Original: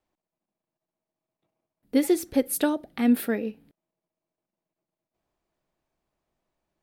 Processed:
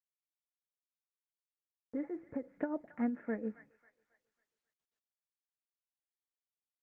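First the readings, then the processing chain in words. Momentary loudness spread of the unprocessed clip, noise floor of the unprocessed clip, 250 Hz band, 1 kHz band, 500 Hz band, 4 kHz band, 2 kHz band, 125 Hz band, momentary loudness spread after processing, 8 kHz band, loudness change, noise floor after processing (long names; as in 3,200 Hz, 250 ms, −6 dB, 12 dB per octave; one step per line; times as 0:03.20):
6 LU, below −85 dBFS, −13.5 dB, −12.5 dB, −14.0 dB, below −40 dB, −13.5 dB, can't be measured, 8 LU, below −40 dB, −14.5 dB, below −85 dBFS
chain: adaptive Wiener filter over 9 samples
high-pass filter 130 Hz 12 dB per octave
noise gate −53 dBFS, range −59 dB
Butterworth low-pass 2,000 Hz 48 dB per octave
downward compressor 8 to 1, threshold −25 dBFS, peak gain reduction 9.5 dB
notch comb filter 390 Hz
amplitude tremolo 6.9 Hz, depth 58%
delay with a high-pass on its return 272 ms, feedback 38%, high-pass 1,400 Hz, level −9.5 dB
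level −3.5 dB
Opus 20 kbit/s 48,000 Hz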